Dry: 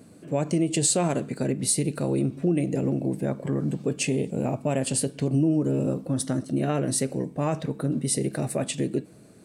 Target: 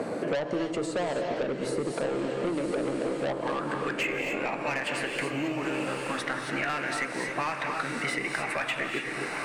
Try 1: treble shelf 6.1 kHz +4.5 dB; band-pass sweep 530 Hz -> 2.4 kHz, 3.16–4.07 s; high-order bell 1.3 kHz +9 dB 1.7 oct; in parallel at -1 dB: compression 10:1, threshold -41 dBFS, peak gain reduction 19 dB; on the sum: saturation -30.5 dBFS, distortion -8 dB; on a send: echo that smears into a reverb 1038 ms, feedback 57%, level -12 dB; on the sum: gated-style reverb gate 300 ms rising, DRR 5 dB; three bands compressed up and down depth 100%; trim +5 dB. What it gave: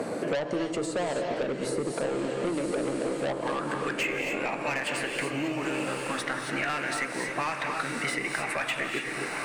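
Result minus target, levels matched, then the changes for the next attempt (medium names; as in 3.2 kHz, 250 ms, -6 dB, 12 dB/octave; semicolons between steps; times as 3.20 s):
8 kHz band +3.5 dB
change: treble shelf 6.1 kHz -3.5 dB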